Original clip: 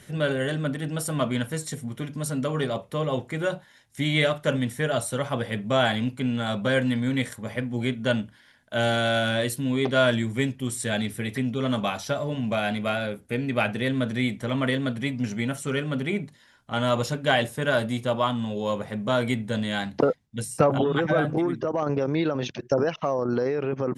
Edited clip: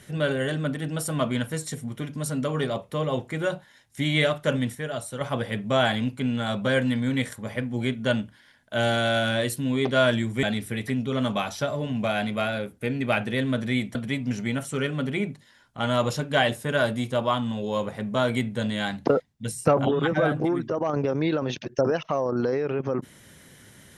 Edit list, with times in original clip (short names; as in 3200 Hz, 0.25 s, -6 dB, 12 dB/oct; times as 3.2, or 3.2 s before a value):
4.75–5.21 gain -6 dB
10.43–10.91 cut
14.43–14.88 cut